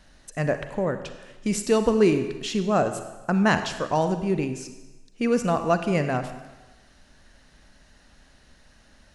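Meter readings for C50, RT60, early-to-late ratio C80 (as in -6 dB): 9.5 dB, 1.2 s, 11.0 dB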